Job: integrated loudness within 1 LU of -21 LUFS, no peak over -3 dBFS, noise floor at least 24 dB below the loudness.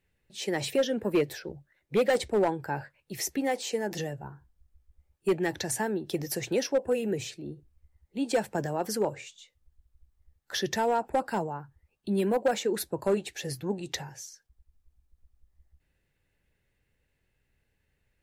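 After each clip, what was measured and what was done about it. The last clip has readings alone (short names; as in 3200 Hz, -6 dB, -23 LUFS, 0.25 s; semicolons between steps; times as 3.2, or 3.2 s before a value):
clipped 0.5%; flat tops at -18.5 dBFS; loudness -30.0 LUFS; peak -18.5 dBFS; loudness target -21.0 LUFS
-> clip repair -18.5 dBFS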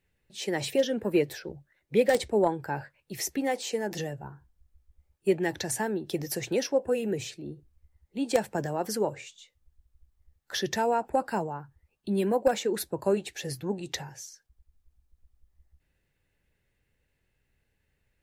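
clipped 0.0%; loudness -29.5 LUFS; peak -9.5 dBFS; loudness target -21.0 LUFS
-> gain +8.5 dB; limiter -3 dBFS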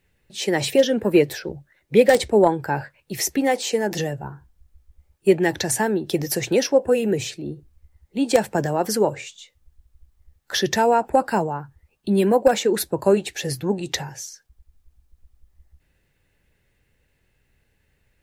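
loudness -21.0 LUFS; peak -3.0 dBFS; noise floor -68 dBFS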